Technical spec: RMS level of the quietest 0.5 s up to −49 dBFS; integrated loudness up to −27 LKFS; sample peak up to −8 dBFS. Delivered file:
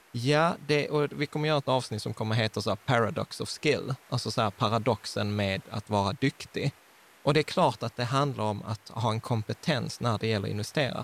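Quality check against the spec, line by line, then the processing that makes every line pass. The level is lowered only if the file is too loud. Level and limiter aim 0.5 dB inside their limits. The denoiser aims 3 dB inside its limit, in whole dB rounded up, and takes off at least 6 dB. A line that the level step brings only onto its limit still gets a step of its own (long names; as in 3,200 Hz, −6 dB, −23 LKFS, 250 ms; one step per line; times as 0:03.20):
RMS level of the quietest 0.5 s −57 dBFS: in spec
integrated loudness −29.0 LKFS: in spec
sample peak −10.5 dBFS: in spec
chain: no processing needed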